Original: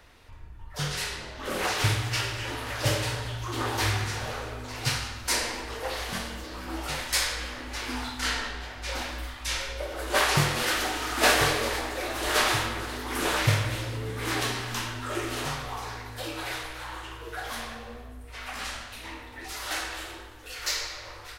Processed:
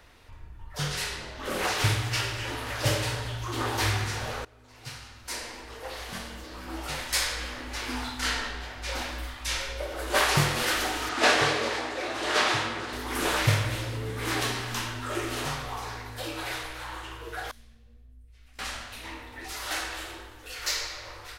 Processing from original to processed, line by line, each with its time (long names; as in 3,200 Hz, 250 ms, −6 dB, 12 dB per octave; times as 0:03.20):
0:04.45–0:07.50: fade in, from −21.5 dB
0:11.09–0:12.93: band-pass filter 120–6,400 Hz
0:17.51–0:18.59: guitar amp tone stack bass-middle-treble 10-0-1